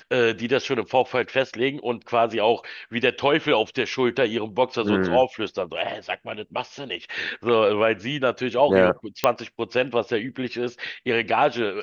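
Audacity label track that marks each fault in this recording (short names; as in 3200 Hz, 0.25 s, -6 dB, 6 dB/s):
9.240000	9.240000	pop -4 dBFS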